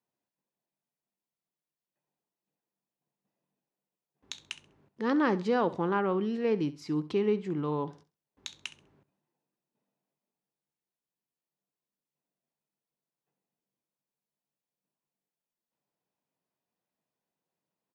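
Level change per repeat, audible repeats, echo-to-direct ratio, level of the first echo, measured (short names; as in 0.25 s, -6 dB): -11.5 dB, 2, -16.0 dB, -16.5 dB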